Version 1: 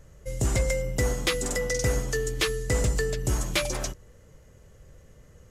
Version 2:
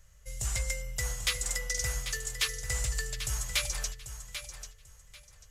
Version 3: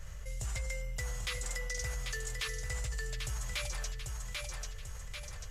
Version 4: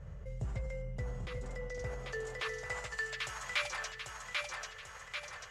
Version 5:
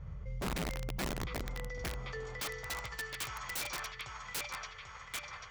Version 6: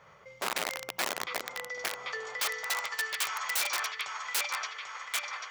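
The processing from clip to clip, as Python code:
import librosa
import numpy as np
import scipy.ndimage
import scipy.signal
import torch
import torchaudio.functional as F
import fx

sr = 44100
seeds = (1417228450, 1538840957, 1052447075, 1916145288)

y1 = fx.tone_stack(x, sr, knobs='10-0-10')
y1 = fx.echo_feedback(y1, sr, ms=791, feedback_pct=22, wet_db=-10)
y2 = fx.high_shelf(y1, sr, hz=4500.0, db=-9.5)
y2 = fx.env_flatten(y2, sr, amount_pct=70)
y2 = y2 * librosa.db_to_amplitude(-6.5)
y3 = fx.filter_sweep_bandpass(y2, sr, from_hz=230.0, to_hz=1400.0, start_s=1.54, end_s=3.08, q=0.83)
y3 = y3 * librosa.db_to_amplitude(8.5)
y4 = scipy.signal.sosfilt(scipy.signal.butter(4, 5700.0, 'lowpass', fs=sr, output='sos'), y3)
y4 = y4 + 0.42 * np.pad(y4, (int(0.9 * sr / 1000.0), 0))[:len(y4)]
y4 = (np.mod(10.0 ** (31.5 / 20.0) * y4 + 1.0, 2.0) - 1.0) / 10.0 ** (31.5 / 20.0)
y5 = scipy.signal.sosfilt(scipy.signal.butter(2, 650.0, 'highpass', fs=sr, output='sos'), y4)
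y5 = y5 * librosa.db_to_amplitude(8.5)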